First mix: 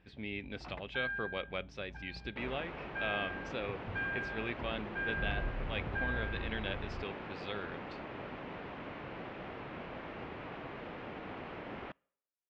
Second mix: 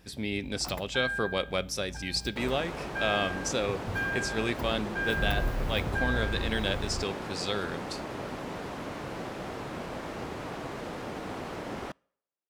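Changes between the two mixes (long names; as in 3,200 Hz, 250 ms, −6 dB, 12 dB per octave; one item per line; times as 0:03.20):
speech: send on
master: remove transistor ladder low-pass 3,300 Hz, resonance 35%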